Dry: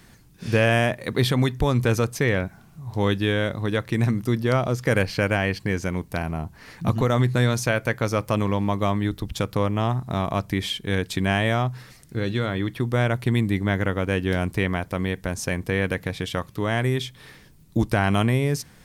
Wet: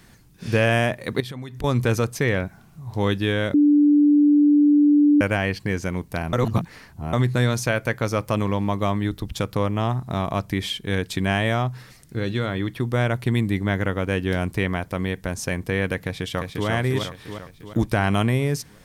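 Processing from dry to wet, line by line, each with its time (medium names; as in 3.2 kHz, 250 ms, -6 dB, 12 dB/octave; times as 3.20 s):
1.20–1.64 s: compression, threshold -31 dBFS
3.54–5.21 s: bleep 293 Hz -12 dBFS
6.33–7.13 s: reverse
15.98–16.68 s: echo throw 350 ms, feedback 55%, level -4 dB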